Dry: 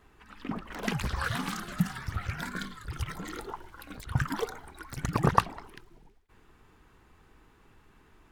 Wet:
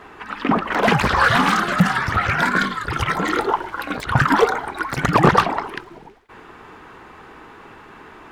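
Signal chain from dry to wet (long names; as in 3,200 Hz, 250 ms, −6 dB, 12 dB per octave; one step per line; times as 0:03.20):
mid-hump overdrive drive 29 dB, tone 1,200 Hz, clips at −3.5 dBFS
level +3.5 dB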